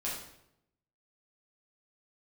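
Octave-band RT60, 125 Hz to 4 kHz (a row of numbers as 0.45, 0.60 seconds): 1.0, 0.90, 0.85, 0.75, 0.70, 0.60 seconds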